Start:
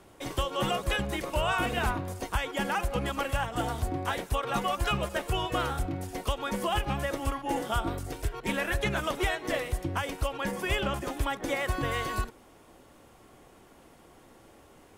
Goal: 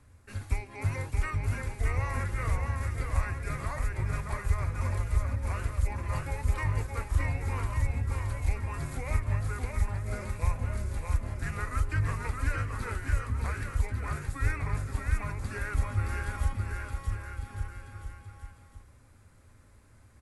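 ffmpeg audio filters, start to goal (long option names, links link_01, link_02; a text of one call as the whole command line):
ffmpeg -i in.wav -af "equalizer=frequency=125:width_type=o:width=1:gain=12,equalizer=frequency=250:width_type=o:width=1:gain=-12,equalizer=frequency=500:width_type=o:width=1:gain=-11,equalizer=frequency=1000:width_type=o:width=1:gain=-12,equalizer=frequency=4000:width_type=o:width=1:gain=-8,equalizer=frequency=8000:width_type=o:width=1:gain=-10,aecho=1:1:460|851|1183|1466|1706:0.631|0.398|0.251|0.158|0.1,asetrate=32667,aresample=44100" out.wav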